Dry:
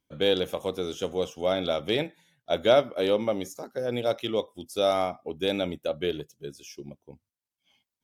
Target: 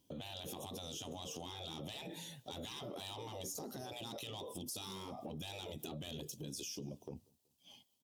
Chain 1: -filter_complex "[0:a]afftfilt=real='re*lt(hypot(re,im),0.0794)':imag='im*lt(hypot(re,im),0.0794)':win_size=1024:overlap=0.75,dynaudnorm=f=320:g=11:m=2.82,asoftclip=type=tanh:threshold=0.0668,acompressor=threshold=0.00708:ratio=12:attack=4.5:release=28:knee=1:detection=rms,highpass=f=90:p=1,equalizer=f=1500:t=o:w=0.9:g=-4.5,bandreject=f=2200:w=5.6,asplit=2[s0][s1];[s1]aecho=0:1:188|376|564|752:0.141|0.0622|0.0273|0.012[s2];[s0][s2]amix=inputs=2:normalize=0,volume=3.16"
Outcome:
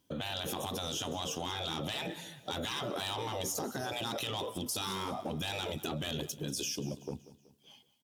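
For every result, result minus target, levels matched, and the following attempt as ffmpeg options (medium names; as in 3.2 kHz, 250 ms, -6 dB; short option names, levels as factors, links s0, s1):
compression: peak gain reduction -8 dB; echo-to-direct +10.5 dB; 2 kHz band +4.0 dB
-filter_complex "[0:a]afftfilt=real='re*lt(hypot(re,im),0.0794)':imag='im*lt(hypot(re,im),0.0794)':win_size=1024:overlap=0.75,dynaudnorm=f=320:g=11:m=2.82,asoftclip=type=tanh:threshold=0.0668,acompressor=threshold=0.00266:ratio=12:attack=4.5:release=28:knee=1:detection=rms,highpass=f=90:p=1,equalizer=f=1500:t=o:w=0.9:g=-4.5,bandreject=f=2200:w=5.6,asplit=2[s0][s1];[s1]aecho=0:1:188|376|564|752:0.141|0.0622|0.0273|0.012[s2];[s0][s2]amix=inputs=2:normalize=0,volume=3.16"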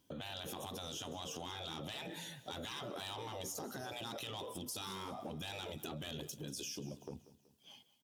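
echo-to-direct +10.5 dB; 2 kHz band +4.0 dB
-filter_complex "[0:a]afftfilt=real='re*lt(hypot(re,im),0.0794)':imag='im*lt(hypot(re,im),0.0794)':win_size=1024:overlap=0.75,dynaudnorm=f=320:g=11:m=2.82,asoftclip=type=tanh:threshold=0.0668,acompressor=threshold=0.00266:ratio=12:attack=4.5:release=28:knee=1:detection=rms,highpass=f=90:p=1,equalizer=f=1500:t=o:w=0.9:g=-4.5,bandreject=f=2200:w=5.6,asplit=2[s0][s1];[s1]aecho=0:1:188|376:0.0422|0.0186[s2];[s0][s2]amix=inputs=2:normalize=0,volume=3.16"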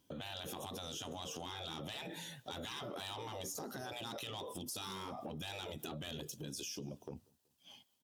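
2 kHz band +4.0 dB
-filter_complex "[0:a]afftfilt=real='re*lt(hypot(re,im),0.0794)':imag='im*lt(hypot(re,im),0.0794)':win_size=1024:overlap=0.75,dynaudnorm=f=320:g=11:m=2.82,asoftclip=type=tanh:threshold=0.0668,acompressor=threshold=0.00266:ratio=12:attack=4.5:release=28:knee=1:detection=rms,highpass=f=90:p=1,equalizer=f=1500:t=o:w=0.9:g=-15.5,bandreject=f=2200:w=5.6,asplit=2[s0][s1];[s1]aecho=0:1:188|376:0.0422|0.0186[s2];[s0][s2]amix=inputs=2:normalize=0,volume=3.16"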